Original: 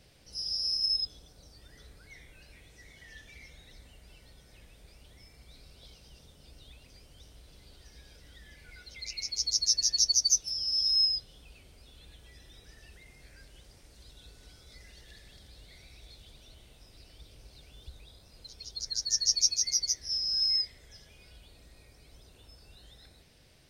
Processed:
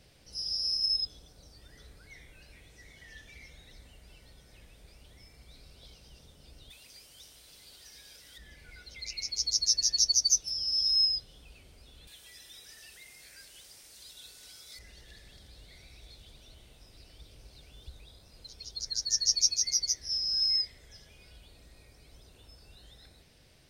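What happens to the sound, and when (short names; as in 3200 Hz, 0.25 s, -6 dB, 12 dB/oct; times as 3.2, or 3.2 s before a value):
6.7–8.38 tilt +3 dB/oct
12.07–14.79 tilt +3.5 dB/oct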